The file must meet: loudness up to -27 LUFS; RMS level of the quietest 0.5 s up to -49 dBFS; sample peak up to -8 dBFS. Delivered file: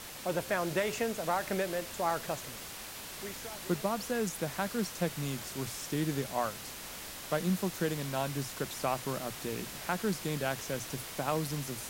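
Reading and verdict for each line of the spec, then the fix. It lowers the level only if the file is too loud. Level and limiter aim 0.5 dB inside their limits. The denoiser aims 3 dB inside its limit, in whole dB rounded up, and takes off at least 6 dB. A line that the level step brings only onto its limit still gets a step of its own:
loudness -34.5 LUFS: pass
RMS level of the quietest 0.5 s -44 dBFS: fail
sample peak -17.0 dBFS: pass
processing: noise reduction 8 dB, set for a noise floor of -44 dBFS

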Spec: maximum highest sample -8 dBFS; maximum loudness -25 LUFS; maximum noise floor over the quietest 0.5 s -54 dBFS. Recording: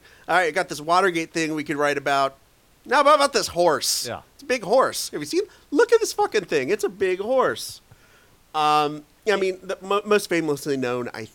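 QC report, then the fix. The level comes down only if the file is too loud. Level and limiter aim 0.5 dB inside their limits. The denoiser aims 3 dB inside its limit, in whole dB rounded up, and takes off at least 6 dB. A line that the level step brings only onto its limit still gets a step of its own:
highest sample -5.0 dBFS: fail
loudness -22.0 LUFS: fail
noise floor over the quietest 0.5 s -57 dBFS: pass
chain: trim -3.5 dB

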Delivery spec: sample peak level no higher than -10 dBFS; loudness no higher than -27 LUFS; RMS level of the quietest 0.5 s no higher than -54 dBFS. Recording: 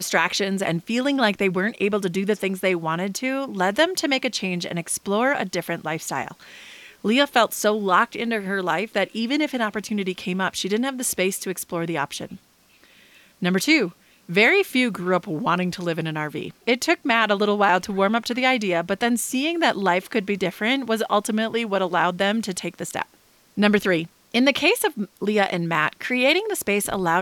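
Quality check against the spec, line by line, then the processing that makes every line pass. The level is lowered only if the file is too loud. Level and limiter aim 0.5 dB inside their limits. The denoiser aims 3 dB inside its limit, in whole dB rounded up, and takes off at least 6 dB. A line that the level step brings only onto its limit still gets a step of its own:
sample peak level -6.0 dBFS: fail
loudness -22.0 LUFS: fail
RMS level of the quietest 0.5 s -57 dBFS: pass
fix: trim -5.5 dB

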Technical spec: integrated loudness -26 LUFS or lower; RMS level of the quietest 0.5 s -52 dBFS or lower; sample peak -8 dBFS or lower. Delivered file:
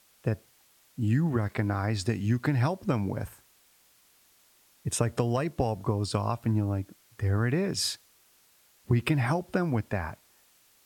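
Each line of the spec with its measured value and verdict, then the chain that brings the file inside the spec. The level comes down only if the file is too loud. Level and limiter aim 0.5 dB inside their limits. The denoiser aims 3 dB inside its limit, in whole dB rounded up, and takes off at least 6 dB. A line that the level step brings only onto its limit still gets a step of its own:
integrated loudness -29.0 LUFS: pass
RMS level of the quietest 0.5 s -63 dBFS: pass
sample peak -10.5 dBFS: pass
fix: none needed

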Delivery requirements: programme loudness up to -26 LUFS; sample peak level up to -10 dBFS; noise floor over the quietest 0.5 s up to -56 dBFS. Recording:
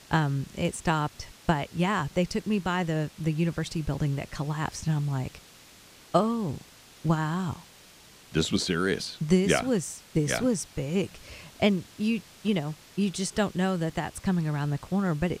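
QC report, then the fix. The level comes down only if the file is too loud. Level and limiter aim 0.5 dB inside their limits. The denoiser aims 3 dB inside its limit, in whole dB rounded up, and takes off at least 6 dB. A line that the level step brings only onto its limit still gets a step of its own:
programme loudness -28.5 LUFS: pass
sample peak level -7.0 dBFS: fail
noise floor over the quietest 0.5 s -53 dBFS: fail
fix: noise reduction 6 dB, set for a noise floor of -53 dBFS; peak limiter -10.5 dBFS

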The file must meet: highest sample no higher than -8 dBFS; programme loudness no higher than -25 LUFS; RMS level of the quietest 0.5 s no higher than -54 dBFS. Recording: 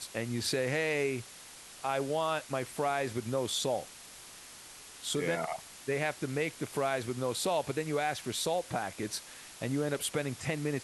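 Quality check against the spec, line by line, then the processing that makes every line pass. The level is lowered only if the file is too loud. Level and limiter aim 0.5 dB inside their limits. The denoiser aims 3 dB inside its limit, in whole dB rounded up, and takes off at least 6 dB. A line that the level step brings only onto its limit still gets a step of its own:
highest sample -17.0 dBFS: pass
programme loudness -33.5 LUFS: pass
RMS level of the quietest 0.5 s -50 dBFS: fail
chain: noise reduction 7 dB, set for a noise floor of -50 dBFS

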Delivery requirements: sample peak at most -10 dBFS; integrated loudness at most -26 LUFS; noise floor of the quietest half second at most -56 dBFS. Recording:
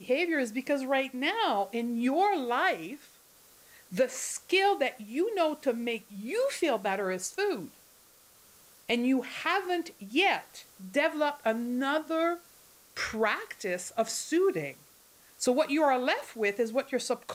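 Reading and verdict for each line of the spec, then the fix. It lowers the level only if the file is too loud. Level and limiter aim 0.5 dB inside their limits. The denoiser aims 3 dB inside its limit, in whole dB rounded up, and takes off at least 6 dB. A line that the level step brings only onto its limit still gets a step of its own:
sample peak -14.0 dBFS: pass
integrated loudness -29.5 LUFS: pass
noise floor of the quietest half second -59 dBFS: pass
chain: none needed

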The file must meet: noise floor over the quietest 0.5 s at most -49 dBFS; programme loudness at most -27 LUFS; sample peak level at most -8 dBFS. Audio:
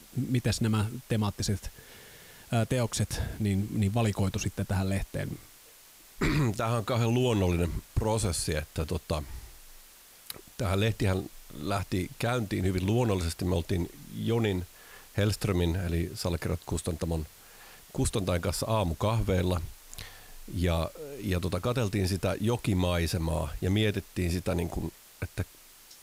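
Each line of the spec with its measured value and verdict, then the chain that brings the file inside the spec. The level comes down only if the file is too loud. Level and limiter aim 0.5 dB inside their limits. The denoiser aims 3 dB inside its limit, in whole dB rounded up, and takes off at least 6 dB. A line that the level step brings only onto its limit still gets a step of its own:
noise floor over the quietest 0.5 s -54 dBFS: pass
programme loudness -30.0 LUFS: pass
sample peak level -16.0 dBFS: pass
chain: none needed

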